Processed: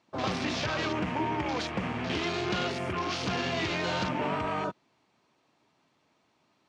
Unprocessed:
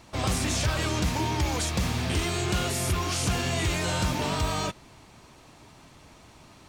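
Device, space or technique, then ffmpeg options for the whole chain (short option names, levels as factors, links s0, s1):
over-cleaned archive recording: -af "highpass=190,lowpass=5300,afwtdn=0.0158"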